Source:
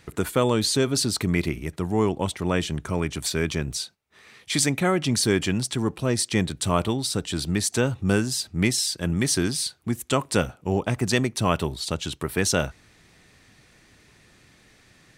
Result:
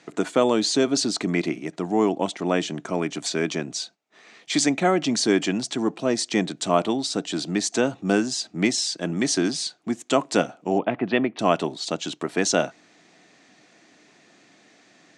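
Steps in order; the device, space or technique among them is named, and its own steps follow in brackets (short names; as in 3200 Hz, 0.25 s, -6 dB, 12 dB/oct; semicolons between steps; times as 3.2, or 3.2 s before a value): 10.78–11.39 steep low-pass 3300 Hz 36 dB/oct; television speaker (speaker cabinet 180–7400 Hz, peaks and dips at 300 Hz +6 dB, 690 Hz +9 dB, 6800 Hz +4 dB)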